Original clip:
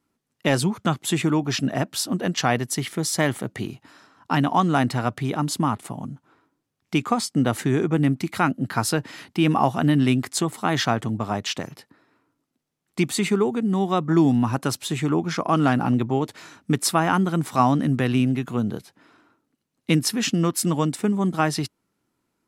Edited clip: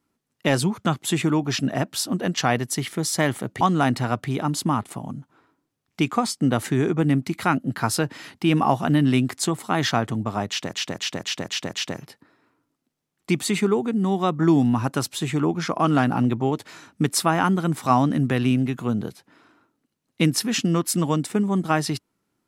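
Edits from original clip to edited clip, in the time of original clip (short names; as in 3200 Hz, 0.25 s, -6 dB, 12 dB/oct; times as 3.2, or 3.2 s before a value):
3.61–4.55 cut
11.42–11.67 loop, 6 plays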